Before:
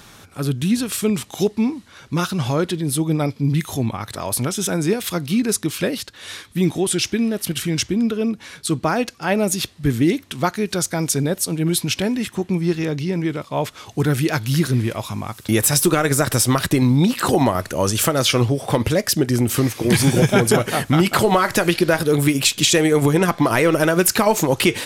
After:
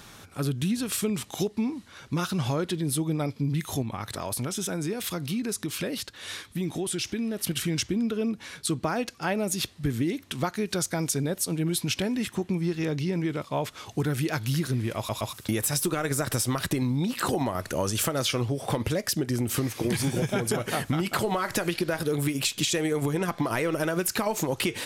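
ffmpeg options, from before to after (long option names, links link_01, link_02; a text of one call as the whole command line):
ffmpeg -i in.wav -filter_complex "[0:a]asettb=1/sr,asplit=3[link_01][link_02][link_03];[link_01]atrim=end=3.824[link_04];[link_02]atrim=start=3.82:end=7.39,asetpts=PTS-STARTPTS,afade=type=in:duration=0.004:curve=qsin,afade=type=out:start_time=3.566:duration=0.004:curve=qsin,acompressor=threshold=-25dB:ratio=2.5:attack=3.2:release=140:knee=1:detection=peak[link_05];[link_03]atrim=start=7.386[link_06];[link_04][link_05]acrossfade=duration=0.004:curve1=hsin:curve2=qsin[link_07];[link_07][link_06]acrossfade=duration=0.004:curve1=qsin:curve2=hsin,asplit=4[link_08][link_09][link_10][link_11];[link_08]atrim=end=15.092[link_12];[link_09]atrim=start=14.968:end=15.092[link_13];[link_10]atrim=start=14.968:end=15.092[link_14];[link_11]atrim=start=15.328[link_15];[link_12][link_13]acrossfade=duration=0.004:curve1=hsin:curve2=hsin[link_16];[link_16][link_14]acrossfade=duration=0.004:curve1=hsin:curve2=hsin[link_17];[link_17][link_15]acrossfade=duration=0.004:curve1=hsin:curve2=hsin,acompressor=threshold=-20dB:ratio=6,volume=-3.5dB" out.wav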